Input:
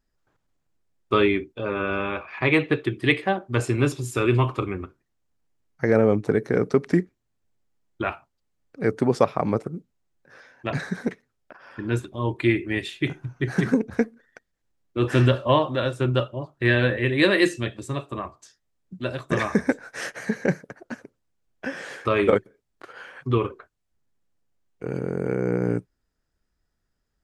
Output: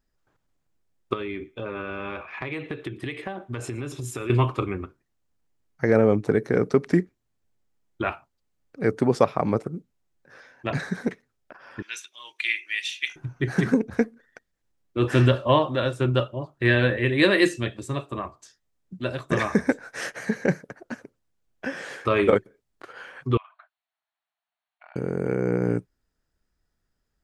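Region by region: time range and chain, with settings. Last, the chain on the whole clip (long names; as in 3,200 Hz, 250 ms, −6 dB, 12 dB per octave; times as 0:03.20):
0:01.13–0:04.30: notch filter 4,600 Hz, Q 10 + downward compressor 16 to 1, threshold −27 dBFS + feedback echo with a high-pass in the loop 116 ms, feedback 23%, high-pass 730 Hz, level −23.5 dB
0:11.82–0:13.16: high-pass with resonance 2,500 Hz, resonance Q 1.8 + parametric band 5,900 Hz +15 dB 0.22 octaves
0:23.37–0:24.96: linear-phase brick-wall band-pass 610–4,500 Hz + downward compressor 8 to 1, threshold −44 dBFS
whole clip: no processing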